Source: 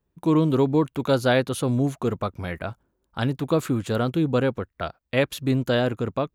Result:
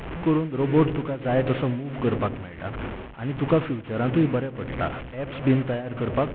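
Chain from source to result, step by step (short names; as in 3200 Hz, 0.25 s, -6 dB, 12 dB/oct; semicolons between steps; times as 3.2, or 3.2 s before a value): delta modulation 16 kbps, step -28.5 dBFS; dark delay 86 ms, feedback 85%, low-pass 550 Hz, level -14 dB; tremolo triangle 1.5 Hz, depth 85%; gain +3 dB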